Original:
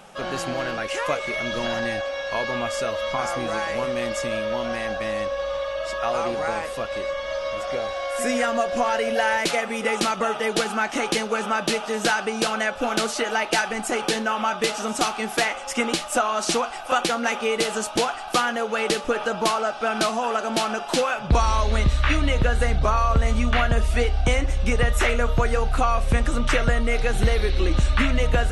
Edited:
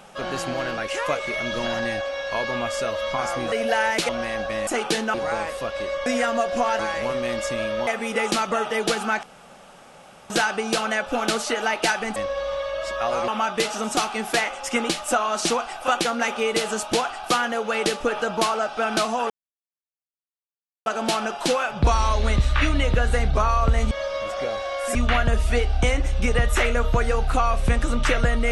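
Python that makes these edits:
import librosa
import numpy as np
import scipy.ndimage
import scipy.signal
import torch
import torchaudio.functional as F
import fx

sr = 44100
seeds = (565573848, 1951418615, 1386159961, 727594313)

y = fx.edit(x, sr, fx.swap(start_s=3.52, length_s=1.08, other_s=8.99, other_length_s=0.57),
    fx.swap(start_s=5.18, length_s=1.12, other_s=13.85, other_length_s=0.47),
    fx.move(start_s=7.22, length_s=1.04, to_s=23.39),
    fx.room_tone_fill(start_s=10.92, length_s=1.07),
    fx.insert_silence(at_s=20.34, length_s=1.56), tone=tone)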